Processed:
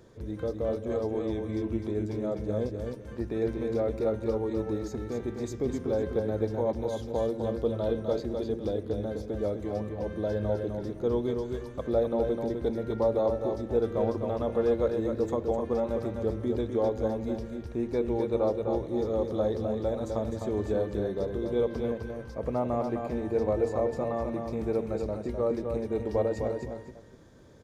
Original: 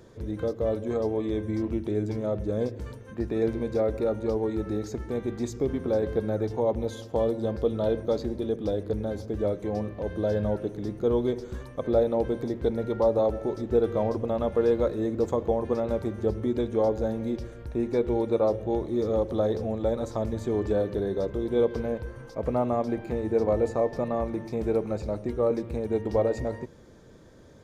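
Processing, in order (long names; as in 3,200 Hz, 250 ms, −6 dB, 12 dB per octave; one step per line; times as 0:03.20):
multi-tap delay 255/504 ms −5.5/−17.5 dB
level −3.5 dB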